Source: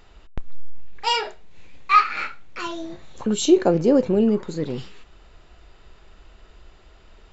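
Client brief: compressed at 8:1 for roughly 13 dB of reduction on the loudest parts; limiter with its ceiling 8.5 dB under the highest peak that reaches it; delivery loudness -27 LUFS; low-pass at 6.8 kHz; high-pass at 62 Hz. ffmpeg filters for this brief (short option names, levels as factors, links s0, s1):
-af "highpass=62,lowpass=6800,acompressor=threshold=0.0708:ratio=8,volume=2.11,alimiter=limit=0.141:level=0:latency=1"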